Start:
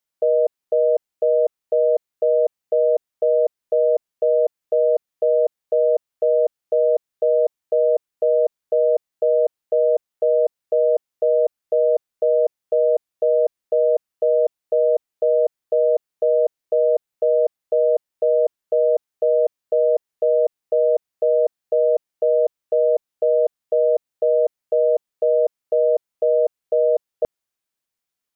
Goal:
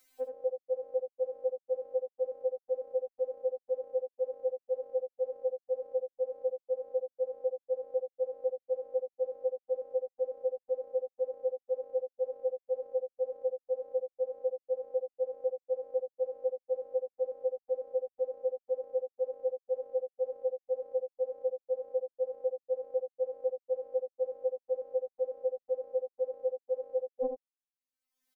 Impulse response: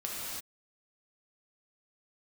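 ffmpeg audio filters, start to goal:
-filter_complex "[0:a]afftdn=nr=23:nf=-30,adynamicequalizer=threshold=0.0178:dfrequency=370:dqfactor=1.7:tfrequency=370:tqfactor=1.7:attack=5:release=100:ratio=0.375:range=3:mode=boostabove:tftype=bell,acompressor=mode=upward:threshold=-36dB:ratio=2.5,asplit=2[a][b];[b]aecho=0:1:77:0.447[c];[a][c]amix=inputs=2:normalize=0,afftfilt=real='re*3.46*eq(mod(b,12),0)':imag='im*3.46*eq(mod(b,12),0)':win_size=2048:overlap=0.75"

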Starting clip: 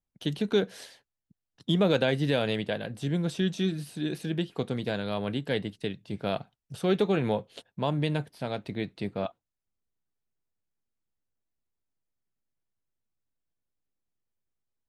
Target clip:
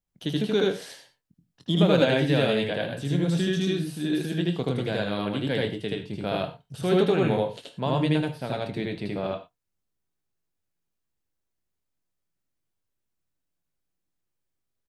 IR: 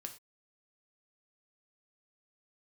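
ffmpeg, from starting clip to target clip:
-filter_complex "[0:a]asplit=2[a][b];[b]adelay=23,volume=-13.5dB[c];[a][c]amix=inputs=2:normalize=0,asplit=2[d][e];[1:a]atrim=start_sample=2205,adelay=78[f];[e][f]afir=irnorm=-1:irlink=0,volume=5dB[g];[d][g]amix=inputs=2:normalize=0"

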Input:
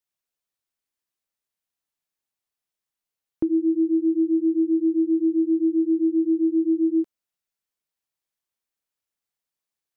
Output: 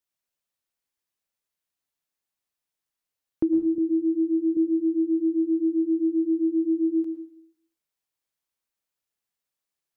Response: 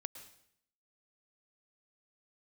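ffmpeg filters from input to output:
-filter_complex "[0:a]asettb=1/sr,asplit=3[a][b][c];[a]atrim=end=3.784[d];[b]atrim=start=3.78:end=4.57,asetpts=PTS-STARTPTS,afade=t=in:d=0.004:c=qsin,afade=t=out:st=0.786:d=0.004:c=qsin,highpass=110[e];[c]atrim=start=4.566[f];[d][e]acrossfade=d=0.004:c1=hsin:c2=qsin[g];[g][f]acrossfade=d=0.004:c1=qsin:c2=hsin[h];[1:a]atrim=start_sample=2205[i];[h][i]afir=irnorm=-1:irlink=0,volume=3.5dB"

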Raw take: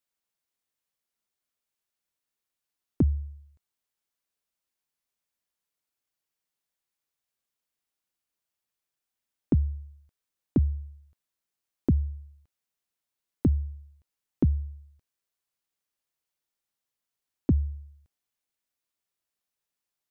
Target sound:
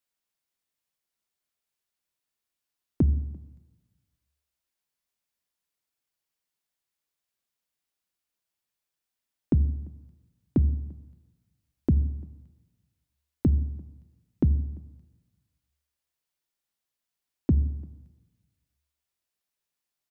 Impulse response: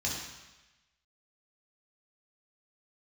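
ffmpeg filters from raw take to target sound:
-filter_complex "[0:a]asplit=2[a][b];[b]adelay=344,volume=-27dB,highshelf=f=4k:g=-7.74[c];[a][c]amix=inputs=2:normalize=0,asplit=2[d][e];[1:a]atrim=start_sample=2205,asetrate=34839,aresample=44100[f];[e][f]afir=irnorm=-1:irlink=0,volume=-22dB[g];[d][g]amix=inputs=2:normalize=0"

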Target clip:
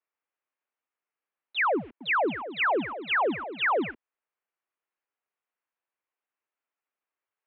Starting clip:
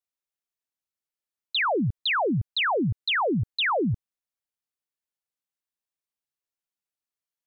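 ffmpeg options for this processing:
-filter_complex "[0:a]equalizer=f=1.2k:t=o:w=1.1:g=3.5,alimiter=limit=-23.5dB:level=0:latency=1:release=254,asoftclip=type=tanh:threshold=-25dB,acrusher=bits=6:mode=log:mix=0:aa=0.000001,asettb=1/sr,asplit=3[a][b][c];[a]atrim=end=1.784[d];[b]atrim=start=1.78:end=3.91,asetpts=PTS-STARTPTS,afade=t=in:d=0.004:c=qsin,afade=t=out:st=2.126:d=0.004:c=qsin,asplit=5[e][f][g][h][i];[f]adelay=224,afreqshift=36,volume=-12dB[j];[g]adelay=448,afreqshift=72,volume=-20.9dB[k];[h]adelay=672,afreqshift=108,volume=-29.7dB[l];[i]adelay=896,afreqshift=144,volume=-38.6dB[m];[e][j][k][l][m]amix=inputs=5:normalize=0,atrim=end_sample=93933[n];[c]atrim=start=3.906[o];[d][n]acrossfade=d=0.004:c1=hsin:c2=qsin[p];[p][o]acrossfade=d=0.004:c1=qsin:c2=hsin,highpass=f=380:t=q:w=0.5412,highpass=f=380:t=q:w=1.307,lowpass=f=2.8k:t=q:w=0.5176,lowpass=f=2.8k:t=q:w=0.7071,lowpass=f=2.8k:t=q:w=1.932,afreqshift=-85,volume=5.5dB"

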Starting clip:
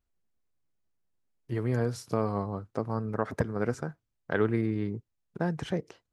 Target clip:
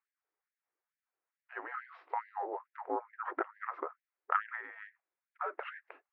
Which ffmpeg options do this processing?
-af "bandreject=f=890:w=19,highpass=f=260:t=q:w=0.5412,highpass=f=260:t=q:w=1.307,lowpass=f=2.5k:t=q:w=0.5176,lowpass=f=2.5k:t=q:w=0.7071,lowpass=f=2.5k:t=q:w=1.932,afreqshift=-280,afftfilt=real='re*gte(b*sr/1024,280*pow(1600/280,0.5+0.5*sin(2*PI*2.3*pts/sr)))':imag='im*gte(b*sr/1024,280*pow(1600/280,0.5+0.5*sin(2*PI*2.3*pts/sr)))':win_size=1024:overlap=0.75,volume=5dB"

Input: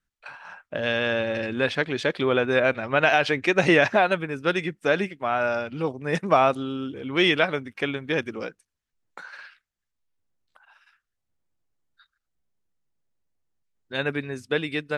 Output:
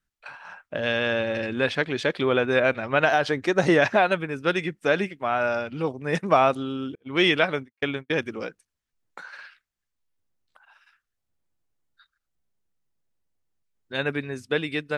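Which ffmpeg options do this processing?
-filter_complex "[0:a]asettb=1/sr,asplit=3[a][b][c];[a]atrim=end=3.054[d];[b]atrim=start=3.05:end=3.82,asetpts=PTS-STARTPTS,afade=t=in:d=0.004:c=qsin,afade=t=out:st=0.766:d=0.004:c=qsin,equalizer=f=2.5k:w=2.4:g=-10.5[e];[c]atrim=start=3.816[f];[d][e]acrossfade=d=0.004:c1=hsin:c2=qsin[g];[g][f]acrossfade=d=0.004:c1=qsin:c2=hsin,asettb=1/sr,asplit=3[h][i][j];[h]atrim=end=6.954[k];[i]atrim=start=6.95:end=8.26,asetpts=PTS-STARTPTS,afade=t=in:d=0.004:c=qsin,afade=t=out:st=1.306:d=0.004:c=qsin,agate=range=-41dB:threshold=-31dB:ratio=16:detection=peak[l];[j]atrim=start=8.256[m];[k][l]acrossfade=d=0.004:c1=hsin:c2=qsin[n];[n][m]acrossfade=d=0.004:c1=qsin:c2=hsin"

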